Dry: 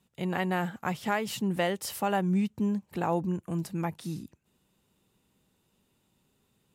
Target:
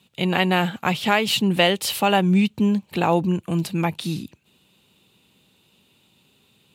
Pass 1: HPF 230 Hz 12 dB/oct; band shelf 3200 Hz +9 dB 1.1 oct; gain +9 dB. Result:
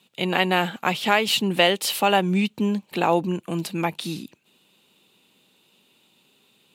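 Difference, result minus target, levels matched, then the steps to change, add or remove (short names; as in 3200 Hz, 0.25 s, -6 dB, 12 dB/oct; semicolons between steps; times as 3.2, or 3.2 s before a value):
125 Hz band -4.0 dB
change: HPF 82 Hz 12 dB/oct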